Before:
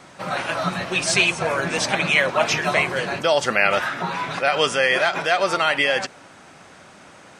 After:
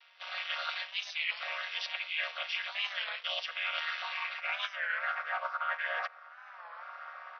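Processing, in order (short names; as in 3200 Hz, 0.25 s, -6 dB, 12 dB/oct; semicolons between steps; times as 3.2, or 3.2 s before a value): chord vocoder minor triad, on D#3; tilt shelf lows -5.5 dB, about 860 Hz; in parallel at -6.5 dB: bit-crush 5-bit; on the sum: AGC gain up to 10.5 dB; band-pass sweep 3100 Hz -> 1300 Hz, 3.94–5.48; reverse; compressor 6:1, threshold -29 dBFS, peak gain reduction 16 dB; reverse; FFT band-pass 480–5900 Hz; record warp 33 1/3 rpm, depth 160 cents; gain -3 dB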